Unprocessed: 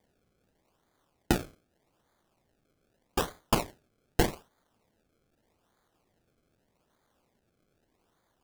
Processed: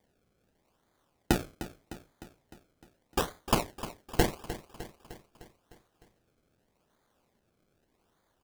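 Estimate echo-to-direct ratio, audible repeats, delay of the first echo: -11.5 dB, 5, 304 ms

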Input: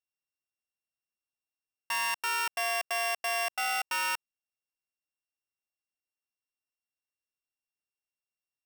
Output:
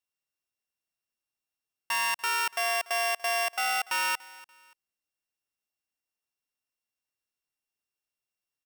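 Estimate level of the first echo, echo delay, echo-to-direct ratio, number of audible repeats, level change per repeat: -20.5 dB, 289 ms, -20.0 dB, 2, -10.0 dB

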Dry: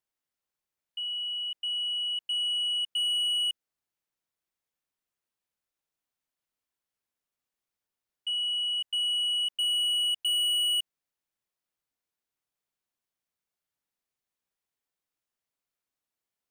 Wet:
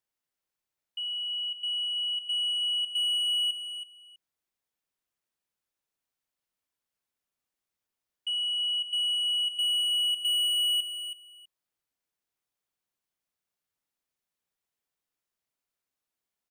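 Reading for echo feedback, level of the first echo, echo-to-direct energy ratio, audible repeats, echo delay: 17%, -10.0 dB, -10.0 dB, 2, 325 ms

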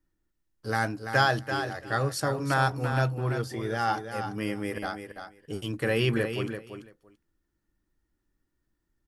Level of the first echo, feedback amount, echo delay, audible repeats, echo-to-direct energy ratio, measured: -8.0 dB, 15%, 337 ms, 2, -8.0 dB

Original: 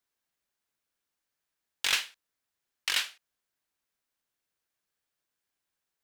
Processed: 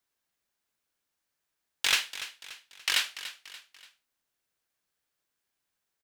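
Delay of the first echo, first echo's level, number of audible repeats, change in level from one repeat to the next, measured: 289 ms, -13.5 dB, 3, -7.0 dB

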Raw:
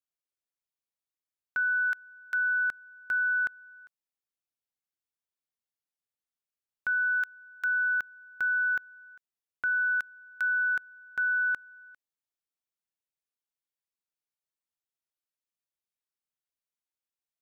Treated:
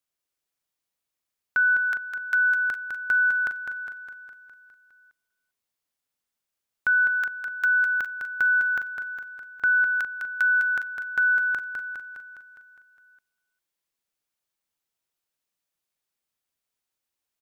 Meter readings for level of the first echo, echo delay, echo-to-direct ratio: -6.0 dB, 205 ms, -4.0 dB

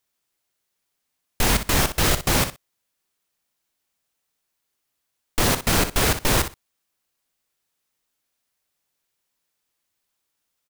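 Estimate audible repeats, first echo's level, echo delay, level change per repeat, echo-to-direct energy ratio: 2, -10.5 dB, 61 ms, -16.0 dB, -10.5 dB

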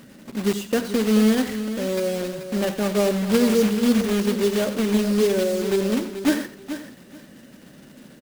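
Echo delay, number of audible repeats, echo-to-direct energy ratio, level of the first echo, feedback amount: 88 ms, 4, -8.5 dB, -13.0 dB, no regular repeats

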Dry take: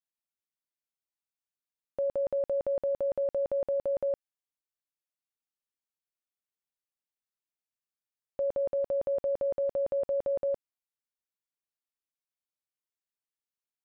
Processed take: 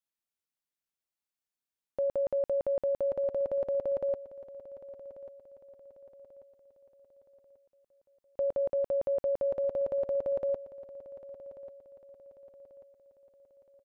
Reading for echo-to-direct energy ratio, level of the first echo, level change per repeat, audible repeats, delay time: -14.5 dB, -15.5 dB, -7.5 dB, 3, 1139 ms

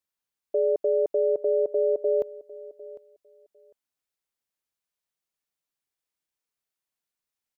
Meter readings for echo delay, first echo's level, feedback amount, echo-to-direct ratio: 752 ms, -18.5 dB, 17%, -18.5 dB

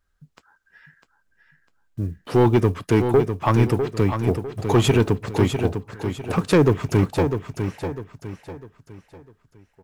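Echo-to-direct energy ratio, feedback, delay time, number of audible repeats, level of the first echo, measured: -7.0 dB, 37%, 651 ms, 4, -7.5 dB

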